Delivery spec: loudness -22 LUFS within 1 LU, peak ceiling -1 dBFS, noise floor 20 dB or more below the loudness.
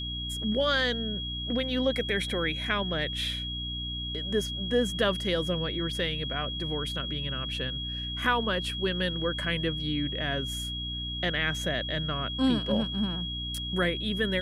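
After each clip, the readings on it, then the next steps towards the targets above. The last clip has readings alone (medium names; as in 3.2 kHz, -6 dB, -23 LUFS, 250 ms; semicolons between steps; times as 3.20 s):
hum 60 Hz; highest harmonic 300 Hz; hum level -35 dBFS; steady tone 3.3 kHz; tone level -34 dBFS; loudness -29.0 LUFS; peak level -12.5 dBFS; loudness target -22.0 LUFS
-> de-hum 60 Hz, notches 5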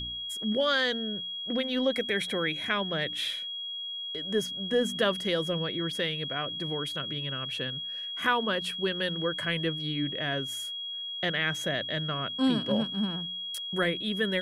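hum not found; steady tone 3.3 kHz; tone level -34 dBFS
-> band-stop 3.3 kHz, Q 30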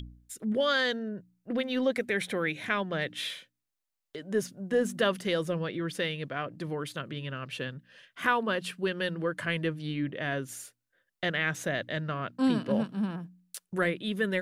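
steady tone not found; loudness -31.0 LUFS; peak level -13.5 dBFS; loudness target -22.0 LUFS
-> trim +9 dB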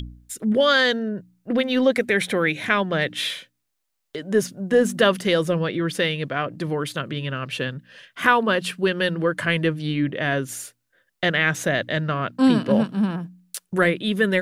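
loudness -22.0 LUFS; peak level -4.5 dBFS; noise floor -76 dBFS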